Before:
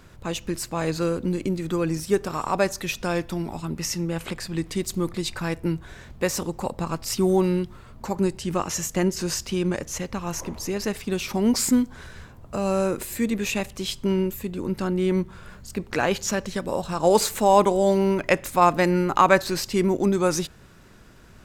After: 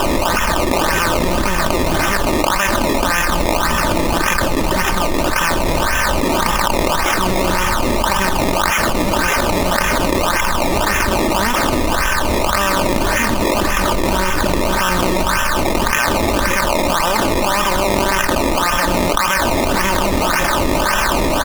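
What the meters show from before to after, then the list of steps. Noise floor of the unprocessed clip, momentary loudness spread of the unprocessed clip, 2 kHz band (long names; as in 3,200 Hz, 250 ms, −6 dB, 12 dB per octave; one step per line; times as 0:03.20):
−48 dBFS, 11 LU, +15.0 dB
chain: compressor on every frequency bin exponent 0.4
dynamic equaliser 610 Hz, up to −7 dB, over −29 dBFS, Q 1.4
spectral peaks only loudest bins 64
guitar amp tone stack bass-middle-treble 10-0-10
repeating echo 157 ms, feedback 54%, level −14 dB
in parallel at −10.5 dB: comparator with hysteresis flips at −27.5 dBFS
on the sum: sample-and-hold swept by an LFO 20×, swing 100% 1.8 Hz
comb filter 3.3 ms, depth 46%
envelope flattener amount 100%
level +5.5 dB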